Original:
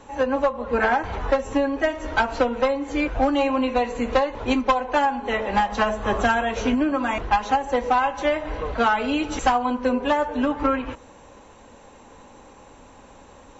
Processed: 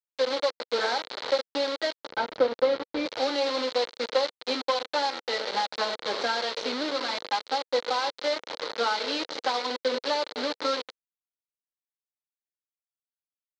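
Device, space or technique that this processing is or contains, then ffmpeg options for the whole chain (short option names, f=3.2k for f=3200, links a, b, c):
hand-held game console: -filter_complex "[0:a]acrusher=bits=3:mix=0:aa=0.000001,highpass=470,equalizer=f=490:t=q:w=4:g=5,equalizer=f=730:t=q:w=4:g=-6,equalizer=f=1.1k:t=q:w=4:g=-5,equalizer=f=1.7k:t=q:w=4:g=-5,equalizer=f=2.6k:t=q:w=4:g=-7,equalizer=f=4.2k:t=q:w=4:g=9,lowpass=f=4.9k:w=0.5412,lowpass=f=4.9k:w=1.3066,asettb=1/sr,asplit=3[a][b][c];[a]atrim=end=2.084[d];[b]atrim=start=2.08:end=3.06,asetpts=PTS-STARTPTS,afade=t=in:d=0.004:c=qsin,afade=t=out:st=0.976:d=0.004:c=qsin,aemphasis=mode=reproduction:type=riaa[e];[c]atrim=start=3.056[f];[d][e]acrossfade=d=0.004:c1=hsin:c2=qsin[g];[g][f]acrossfade=d=0.004:c1=qsin:c2=hsin,volume=-4dB"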